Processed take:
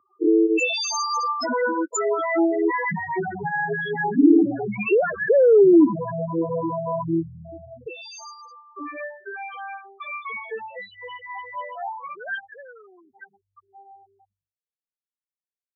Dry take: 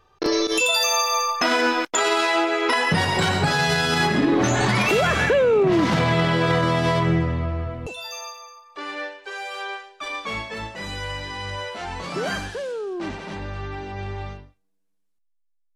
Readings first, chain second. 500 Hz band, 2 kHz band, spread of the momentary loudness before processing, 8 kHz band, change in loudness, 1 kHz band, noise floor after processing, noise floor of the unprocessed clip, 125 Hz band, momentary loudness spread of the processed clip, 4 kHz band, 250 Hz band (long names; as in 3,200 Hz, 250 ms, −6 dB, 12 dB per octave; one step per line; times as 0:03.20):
+1.5 dB, −5.5 dB, 15 LU, can't be measured, 0.0 dB, −4.0 dB, below −85 dBFS, −67 dBFS, −11.5 dB, 21 LU, −11.0 dB, +3.0 dB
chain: spectral peaks only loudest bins 4
high-pass filter sweep 290 Hz → 1,400 Hz, 0:09.87–0:12.79
dynamic equaliser 3,800 Hz, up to −5 dB, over −49 dBFS, Q 2.5